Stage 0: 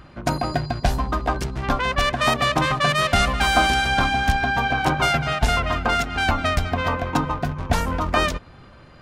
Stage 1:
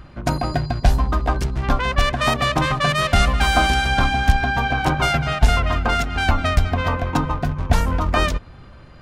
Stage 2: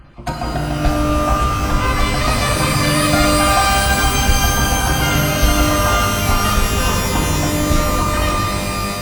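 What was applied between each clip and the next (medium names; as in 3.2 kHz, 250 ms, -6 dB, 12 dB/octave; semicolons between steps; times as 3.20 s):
bass shelf 100 Hz +9 dB
random holes in the spectrogram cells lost 25%; pitch-shifted reverb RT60 3.3 s, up +12 st, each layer -2 dB, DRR -0.5 dB; trim -1.5 dB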